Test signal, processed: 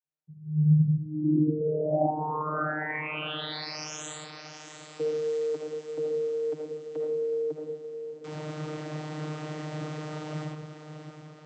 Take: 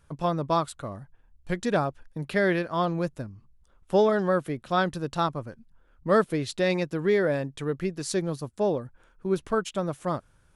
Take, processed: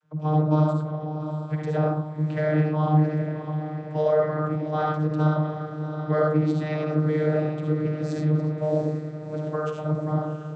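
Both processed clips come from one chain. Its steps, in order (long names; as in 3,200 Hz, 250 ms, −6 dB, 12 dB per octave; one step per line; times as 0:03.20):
feedback delay with all-pass diffusion 703 ms, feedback 55%, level −9.5 dB
comb and all-pass reverb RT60 0.6 s, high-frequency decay 0.4×, pre-delay 30 ms, DRR −0.5 dB
channel vocoder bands 32, saw 153 Hz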